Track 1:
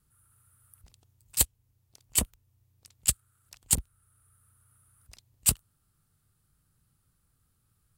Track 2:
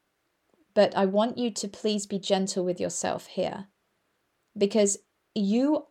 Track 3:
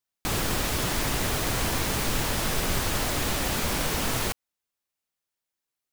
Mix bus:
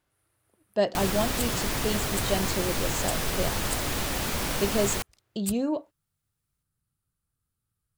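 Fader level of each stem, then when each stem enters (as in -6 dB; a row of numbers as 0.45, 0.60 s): -10.5, -3.5, -2.0 dB; 0.00, 0.00, 0.70 s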